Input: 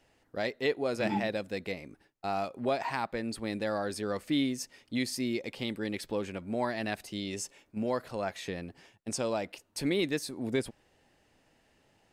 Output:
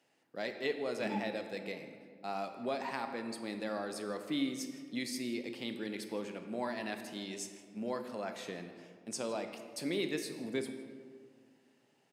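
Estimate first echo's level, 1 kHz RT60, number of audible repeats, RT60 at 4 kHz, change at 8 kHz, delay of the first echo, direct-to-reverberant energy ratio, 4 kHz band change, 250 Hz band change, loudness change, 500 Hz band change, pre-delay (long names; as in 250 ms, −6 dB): −20.0 dB, 1.8 s, 1, 1.1 s, −4.5 dB, 161 ms, 6.5 dB, −4.5 dB, −5.0 dB, −5.0 dB, −5.5 dB, 20 ms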